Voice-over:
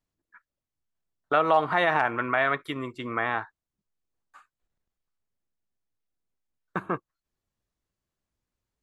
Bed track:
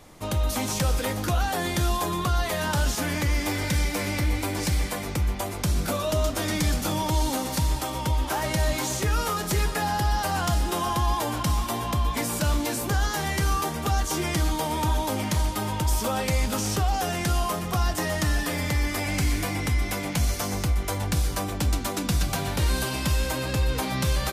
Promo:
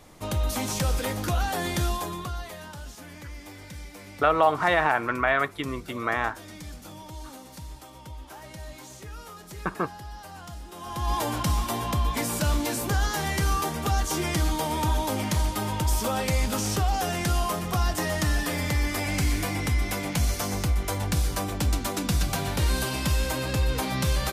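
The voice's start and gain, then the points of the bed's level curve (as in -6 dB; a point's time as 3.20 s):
2.90 s, +1.0 dB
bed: 1.82 s -1.5 dB
2.78 s -16.5 dB
10.72 s -16.5 dB
11.15 s -0.5 dB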